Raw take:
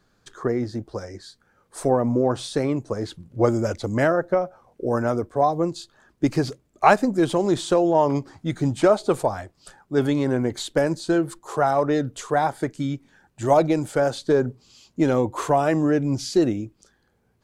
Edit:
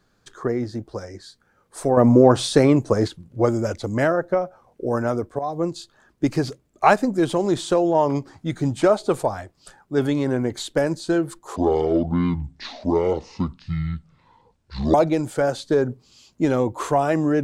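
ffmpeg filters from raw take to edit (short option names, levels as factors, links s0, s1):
-filter_complex "[0:a]asplit=6[s0][s1][s2][s3][s4][s5];[s0]atrim=end=1.972[s6];[s1]atrim=start=1.968:end=3.082,asetpts=PTS-STARTPTS,volume=2.51[s7];[s2]atrim=start=3.078:end=5.39,asetpts=PTS-STARTPTS,afade=t=out:st=2.308:d=0.004:c=hsin:silence=0.223872[s8];[s3]atrim=start=5.39:end=11.564,asetpts=PTS-STARTPTS,afade=t=in:d=0.26:silence=0.223872[s9];[s4]atrim=start=11.56:end=13.52,asetpts=PTS-STARTPTS,asetrate=25578,aresample=44100[s10];[s5]atrim=start=13.516[s11];[s6][s7]acrossfade=d=0.004:c1=hsin:c2=hsin[s12];[s8][s9]concat=n=2:v=0:a=1[s13];[s12][s13]acrossfade=d=0.004:c1=hsin:c2=hsin[s14];[s14][s10]acrossfade=d=0.004:c1=hsin:c2=hsin[s15];[s15][s11]acrossfade=d=0.004:c1=hsin:c2=hsin"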